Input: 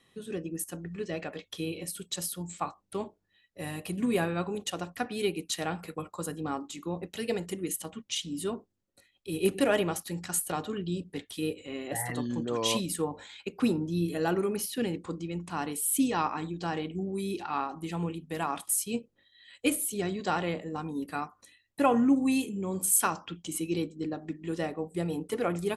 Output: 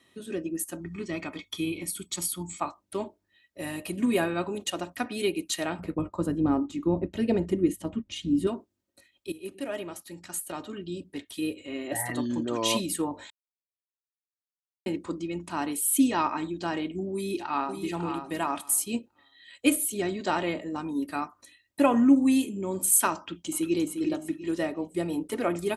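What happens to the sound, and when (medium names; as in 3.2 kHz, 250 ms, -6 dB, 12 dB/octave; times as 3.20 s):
0.80–2.60 s: comb 0.9 ms
5.79–8.47 s: tilt EQ -4 dB/octave
9.32–12.11 s: fade in, from -18 dB
13.30–14.86 s: mute
17.13–17.83 s: echo throw 550 ms, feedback 15%, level -7 dB
23.17–23.80 s: echo throw 350 ms, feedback 35%, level -7.5 dB
whole clip: high-pass 62 Hz; comb 3.2 ms, depth 50%; dynamic bell 5.3 kHz, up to -4 dB, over -58 dBFS, Q 5.3; trim +2 dB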